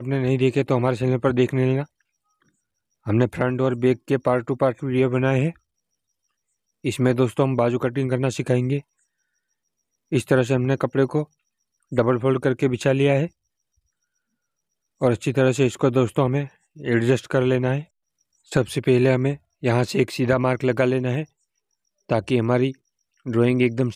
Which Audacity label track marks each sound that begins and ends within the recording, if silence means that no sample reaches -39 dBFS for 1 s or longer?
3.060000	5.560000	sound
6.840000	8.810000	sound
10.120000	13.280000	sound